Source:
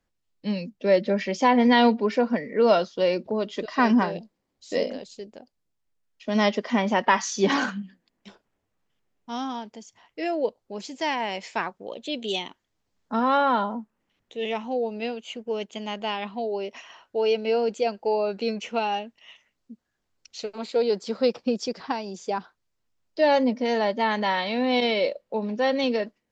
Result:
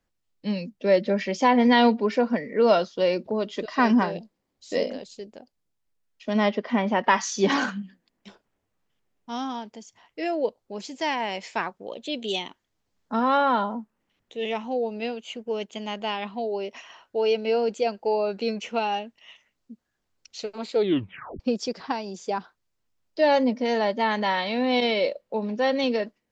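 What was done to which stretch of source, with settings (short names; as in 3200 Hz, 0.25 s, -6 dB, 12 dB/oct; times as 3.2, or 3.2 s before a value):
6.33–7.04 air absorption 190 m
20.75 tape stop 0.65 s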